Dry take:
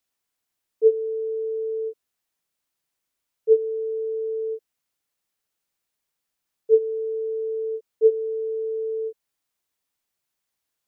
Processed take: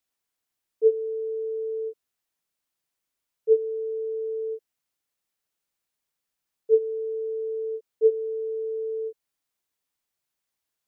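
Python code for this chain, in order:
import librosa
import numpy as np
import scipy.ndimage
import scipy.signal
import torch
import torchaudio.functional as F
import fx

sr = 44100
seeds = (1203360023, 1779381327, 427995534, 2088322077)

y = x * librosa.db_to_amplitude(-2.5)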